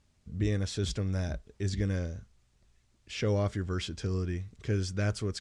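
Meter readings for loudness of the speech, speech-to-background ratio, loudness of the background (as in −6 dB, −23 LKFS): −33.0 LKFS, 13.0 dB, −46.0 LKFS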